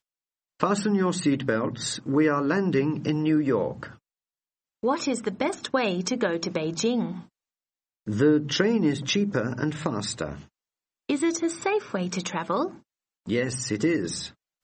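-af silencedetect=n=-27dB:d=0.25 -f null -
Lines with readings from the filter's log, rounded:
silence_start: 0.00
silence_end: 0.63 | silence_duration: 0.63
silence_start: 3.83
silence_end: 4.84 | silence_duration: 1.01
silence_start: 7.12
silence_end: 8.08 | silence_duration: 0.96
silence_start: 10.32
silence_end: 11.09 | silence_duration: 0.78
silence_start: 12.67
silence_end: 13.28 | silence_duration: 0.61
silence_start: 14.26
silence_end: 14.63 | silence_duration: 0.37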